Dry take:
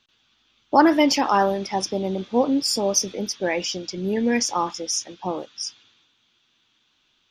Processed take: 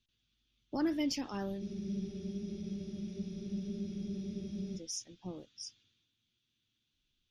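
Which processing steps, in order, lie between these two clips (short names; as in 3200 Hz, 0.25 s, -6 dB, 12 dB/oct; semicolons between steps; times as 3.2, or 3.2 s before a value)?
passive tone stack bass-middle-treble 10-0-1; spectral freeze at 1.62, 3.16 s; gain +6 dB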